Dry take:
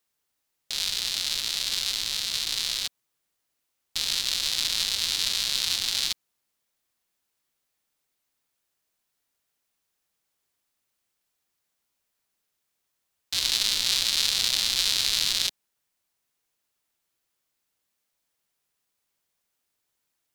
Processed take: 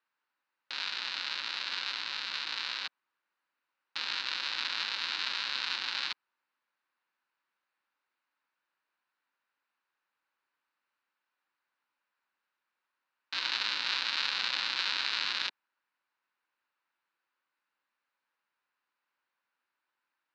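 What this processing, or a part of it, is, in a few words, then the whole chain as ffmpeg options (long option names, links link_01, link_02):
phone earpiece: -af "highpass=410,equalizer=frequency=430:width_type=q:width=4:gain=-9,equalizer=frequency=670:width_type=q:width=4:gain=-9,equalizer=frequency=970:width_type=q:width=4:gain=4,equalizer=frequency=1500:width_type=q:width=4:gain=5,equalizer=frequency=2100:width_type=q:width=4:gain=-3,equalizer=frequency=3300:width_type=q:width=4:gain=-9,lowpass=frequency=3400:width=0.5412,lowpass=frequency=3400:width=1.3066,volume=2dB"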